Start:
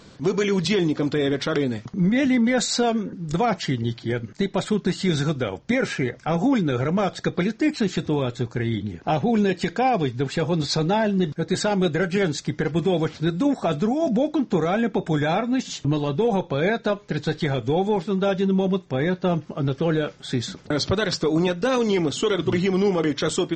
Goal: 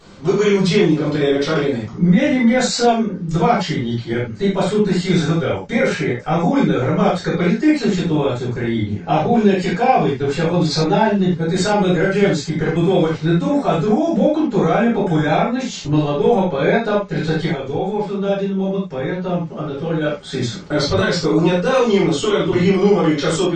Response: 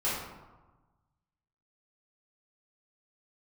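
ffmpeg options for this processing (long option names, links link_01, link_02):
-filter_complex "[0:a]asettb=1/sr,asplit=3[link_01][link_02][link_03];[link_01]atrim=end=17.454[link_04];[link_02]atrim=start=17.45:end=20.01,asetpts=PTS-STARTPTS,afade=type=in:duration=0.004:curve=qsin,afade=type=out:start_time=2.556:duration=0.004:curve=qsin,acompressor=threshold=-28dB:ratio=2[link_05];[link_03]atrim=start=20.006[link_06];[link_04][link_05]acrossfade=duration=0.004:curve1=hsin:curve2=qsin[link_07];[link_07][link_06]acrossfade=duration=0.004:curve1=qsin:curve2=hsin[link_08];[1:a]atrim=start_sample=2205,afade=type=out:start_time=0.15:duration=0.01,atrim=end_sample=7056[link_09];[link_08][link_09]afir=irnorm=-1:irlink=0,volume=-1.5dB"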